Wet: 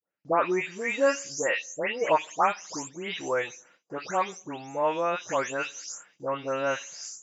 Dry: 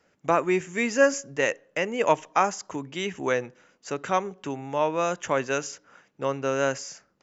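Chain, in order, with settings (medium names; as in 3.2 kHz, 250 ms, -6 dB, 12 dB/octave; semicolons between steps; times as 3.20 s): delay that grows with frequency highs late, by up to 297 ms; gate with hold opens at -49 dBFS; bass shelf 210 Hz -12 dB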